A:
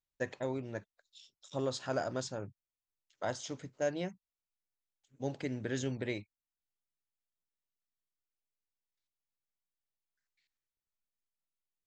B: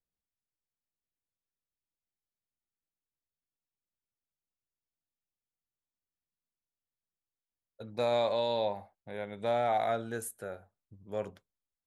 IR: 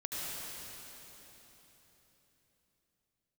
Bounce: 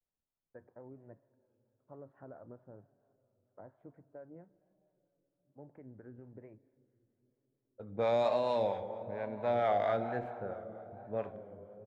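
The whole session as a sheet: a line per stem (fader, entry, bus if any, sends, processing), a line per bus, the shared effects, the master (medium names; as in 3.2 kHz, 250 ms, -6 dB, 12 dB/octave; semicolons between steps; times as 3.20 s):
-9.0 dB, 0.35 s, send -21.5 dB, low-pass 1.9 kHz 24 dB/octave; compression 3:1, threshold -37 dBFS, peak gain reduction 7.5 dB
0.0 dB, 0.00 s, send -9.5 dB, median filter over 9 samples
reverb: on, RT60 3.9 s, pre-delay 69 ms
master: level-controlled noise filter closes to 990 Hz, open at -17 dBFS; vibrato 1.1 Hz 95 cents; harmonic tremolo 4.4 Hz, depth 50%, crossover 560 Hz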